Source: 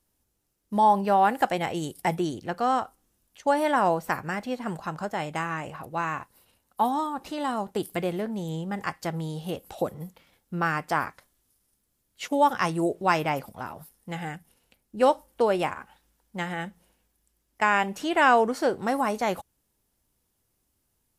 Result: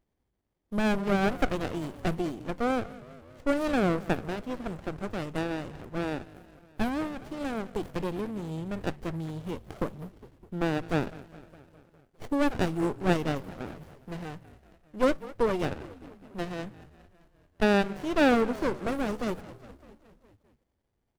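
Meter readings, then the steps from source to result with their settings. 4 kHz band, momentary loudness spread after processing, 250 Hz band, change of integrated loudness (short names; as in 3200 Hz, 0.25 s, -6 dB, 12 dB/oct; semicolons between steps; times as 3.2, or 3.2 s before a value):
-2.5 dB, 16 LU, +1.5 dB, -3.5 dB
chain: frequency-shifting echo 0.204 s, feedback 64%, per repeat -52 Hz, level -17 dB; running maximum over 33 samples; gain -2 dB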